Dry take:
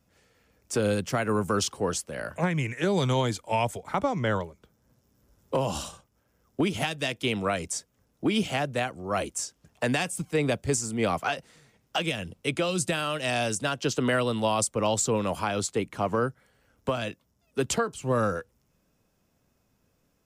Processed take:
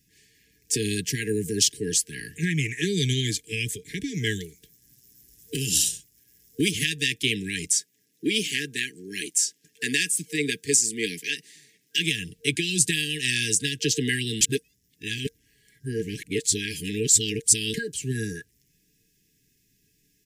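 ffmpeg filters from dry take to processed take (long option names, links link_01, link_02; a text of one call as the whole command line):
ffmpeg -i in.wav -filter_complex "[0:a]asettb=1/sr,asplit=3[link_01][link_02][link_03];[link_01]atrim=end=4.144[link_04];[link_02]atrim=start=4.14:end=6.71,asetpts=PTS-STARTPTS,afade=type=in:duration=0.004:curve=qsin,afade=type=out:start_time=2.566:duration=0.004:curve=qsin,highshelf=frequency=5000:gain=11.5[link_05];[link_03]atrim=start=6.706[link_06];[link_04][link_05]acrossfade=duration=0.004:curve1=hsin:curve2=qsin[link_07];[link_07][link_06]acrossfade=duration=0.004:curve1=qsin:curve2=hsin,asettb=1/sr,asplit=3[link_08][link_09][link_10];[link_08]atrim=end=7.724[link_11];[link_09]atrim=start=7.72:end=11.98,asetpts=PTS-STARTPTS,afade=type=in:duration=0.004:curve=qsin,afade=type=out:start_time=4.256:duration=0.004:curve=qsin,highpass=230[link_12];[link_10]atrim=start=11.976[link_13];[link_11][link_12]acrossfade=duration=0.004:curve1=hsin:curve2=qsin[link_14];[link_14][link_13]acrossfade=duration=0.004:curve1=qsin:curve2=hsin,asplit=3[link_15][link_16][link_17];[link_15]atrim=end=14.412[link_18];[link_16]atrim=start=14.408:end=17.742,asetpts=PTS-STARTPTS,areverse[link_19];[link_17]atrim=start=17.738[link_20];[link_18][link_19]acrossfade=duration=0.004:curve1=hsin:curve2=hsin[link_21];[link_21][link_20]acrossfade=duration=0.004:curve1=hsin:curve2=hsin,afftfilt=real='re*(1-between(b*sr/4096,460,1600))':imag='im*(1-between(b*sr/4096,460,1600))':win_size=4096:overlap=0.75,highshelf=frequency=2500:gain=10.5,aecho=1:1:6.6:0.32" out.wav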